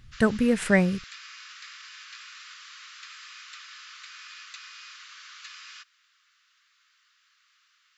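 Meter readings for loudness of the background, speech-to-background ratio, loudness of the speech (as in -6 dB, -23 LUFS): -43.5 LUFS, 20.0 dB, -23.5 LUFS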